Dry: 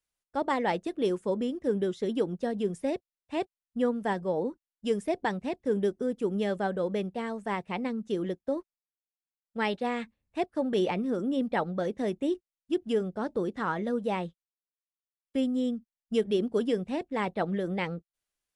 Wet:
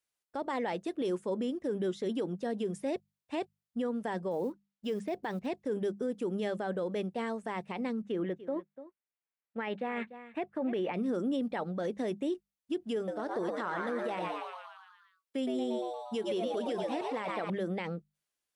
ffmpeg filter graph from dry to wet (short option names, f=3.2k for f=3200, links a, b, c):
-filter_complex "[0:a]asettb=1/sr,asplit=3[a][b][c];[a]atrim=end=4.314[d];[b]atrim=start=4.31:end=5.47,asetpts=PTS-STARTPTS,afade=t=in:d=0.004:c=qsin,afade=t=out:st=1.156:d=0.004:c=qsin,lowpass=5.2k,acrusher=bits=9:mode=log:mix=0:aa=0.000001[e];[c]atrim=start=5.466[f];[d][e]acrossfade=d=0.004:c1=hsin:c2=qsin[g];[g][f]acrossfade=d=0.004:c1=qsin:c2=hsin,asettb=1/sr,asplit=3[h][i][j];[h]atrim=end=8.024[k];[i]atrim=start=8.02:end=10.94,asetpts=PTS-STARTPTS,afade=t=in:d=0.004:c=qsin,afade=t=out:st=2.916:d=0.004:c=qsin,highpass=63,highshelf=f=3.4k:t=q:w=1.5:g=-12.5,aecho=1:1:293:0.126,atrim=end_sample=128772[l];[j]atrim=start=10.936[m];[k][l]acrossfade=d=0.004:c1=hsin:c2=qsin[n];[n][m]acrossfade=d=0.004:c1=qsin:c2=hsin,asettb=1/sr,asplit=3[o][p][q];[o]atrim=end=12.964[r];[p]atrim=start=12.96:end=17.5,asetpts=PTS-STARTPTS,afade=t=in:d=0.004:c=qsin,afade=t=out:st=4.536:d=0.004:c=qsin,lowshelf=f=150:g=-10.5,asplit=9[s][t][u][v][w][x][y][z][aa];[t]adelay=116,afreqshift=120,volume=-5.5dB[ab];[u]adelay=232,afreqshift=240,volume=-10.1dB[ac];[v]adelay=348,afreqshift=360,volume=-14.7dB[ad];[w]adelay=464,afreqshift=480,volume=-19.2dB[ae];[x]adelay=580,afreqshift=600,volume=-23.8dB[af];[y]adelay=696,afreqshift=720,volume=-28.4dB[ag];[z]adelay=812,afreqshift=840,volume=-33dB[ah];[aa]adelay=928,afreqshift=960,volume=-37.6dB[ai];[s][ab][ac][ad][ae][af][ag][ah][ai]amix=inputs=9:normalize=0,atrim=end_sample=200214[aj];[q]atrim=start=17.496[ak];[r][aj]acrossfade=d=0.004:c1=hsin:c2=qsin[al];[al][ak]acrossfade=d=0.004:c1=qsin:c2=hsin,highpass=f=140:p=1,bandreject=f=50:t=h:w=6,bandreject=f=100:t=h:w=6,bandreject=f=150:t=h:w=6,bandreject=f=200:t=h:w=6,alimiter=level_in=1.5dB:limit=-24dB:level=0:latency=1:release=46,volume=-1.5dB"